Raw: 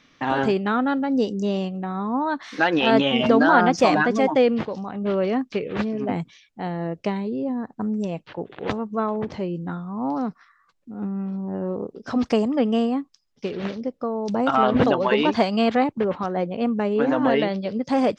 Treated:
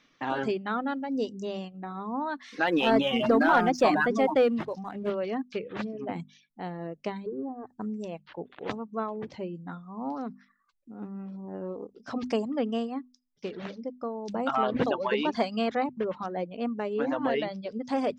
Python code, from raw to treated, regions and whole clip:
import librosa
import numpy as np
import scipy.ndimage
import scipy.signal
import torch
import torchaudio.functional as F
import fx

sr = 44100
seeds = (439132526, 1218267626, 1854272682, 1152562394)

y = fx.chain(x, sr, fx.high_shelf(hz=3300.0, db=-5.0),
    fx.leveller(passes=1), at=(2.67, 5.1))
y = fx.chain(y, sr, fx.crossing_spikes(level_db=-28.0),
    fx.lowpass(hz=1200.0, slope=24),
    fx.comb(ms=2.6, depth=0.83), at=(7.26, 7.67))
y = fx.dereverb_blind(y, sr, rt60_s=0.72)
y = fx.peak_eq(y, sr, hz=77.0, db=-9.0, octaves=1.0)
y = fx.hum_notches(y, sr, base_hz=50, count=5)
y = y * 10.0 ** (-6.5 / 20.0)